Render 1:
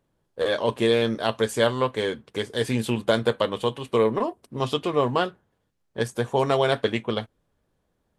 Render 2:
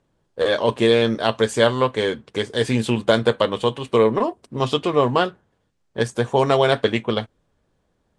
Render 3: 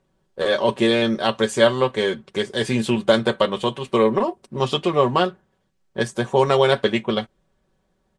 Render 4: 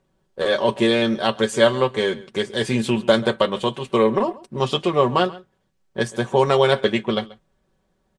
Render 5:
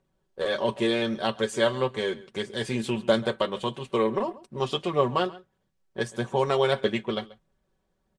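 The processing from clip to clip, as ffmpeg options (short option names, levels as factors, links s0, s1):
-af "lowpass=f=9200:w=0.5412,lowpass=f=9200:w=1.3066,volume=1.68"
-af "aecho=1:1:5.3:0.55,volume=0.891"
-filter_complex "[0:a]asplit=2[s0][s1];[s1]adelay=134.1,volume=0.1,highshelf=f=4000:g=-3.02[s2];[s0][s2]amix=inputs=2:normalize=0"
-af "aphaser=in_gain=1:out_gain=1:delay=3.2:decay=0.23:speed=1.6:type=triangular,volume=0.447"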